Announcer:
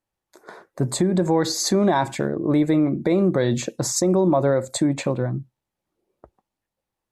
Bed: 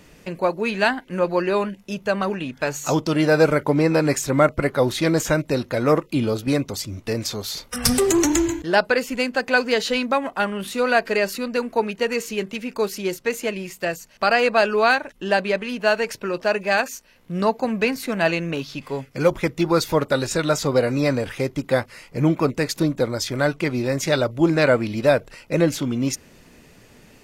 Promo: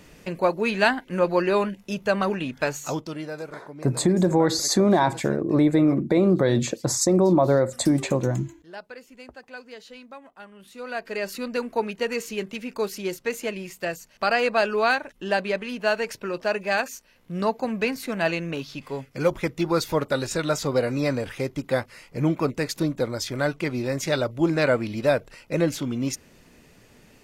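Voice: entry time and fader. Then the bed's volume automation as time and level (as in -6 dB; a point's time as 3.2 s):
3.05 s, 0.0 dB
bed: 2.63 s -0.5 dB
3.51 s -22 dB
10.49 s -22 dB
11.42 s -4 dB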